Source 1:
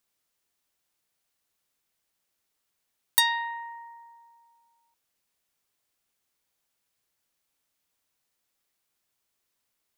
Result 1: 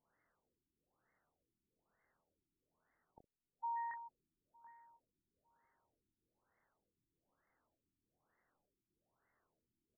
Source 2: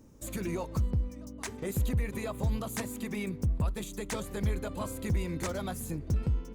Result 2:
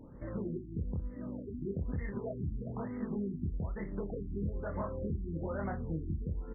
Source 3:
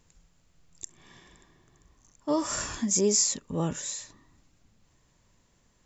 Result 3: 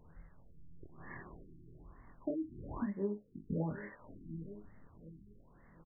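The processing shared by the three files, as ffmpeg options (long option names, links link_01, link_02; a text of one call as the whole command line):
ffmpeg -i in.wav -filter_complex "[0:a]asplit=2[link_01][link_02];[link_02]adelay=732,lowpass=frequency=950:poles=1,volume=-22dB,asplit=2[link_03][link_04];[link_04]adelay=732,lowpass=frequency=950:poles=1,volume=0.36,asplit=2[link_05][link_06];[link_06]adelay=732,lowpass=frequency=950:poles=1,volume=0.36[link_07];[link_03][link_05][link_07]amix=inputs=3:normalize=0[link_08];[link_01][link_08]amix=inputs=2:normalize=0,acompressor=threshold=-38dB:ratio=10,lowpass=frequency=3100:width_type=q:width=7.8,asplit=2[link_09][link_10];[link_10]aecho=0:1:25|63:0.708|0.2[link_11];[link_09][link_11]amix=inputs=2:normalize=0,afftfilt=real='re*lt(b*sr/1024,370*pow(2200/370,0.5+0.5*sin(2*PI*1.1*pts/sr)))':imag='im*lt(b*sr/1024,370*pow(2200/370,0.5+0.5*sin(2*PI*1.1*pts/sr)))':win_size=1024:overlap=0.75,volume=3.5dB" out.wav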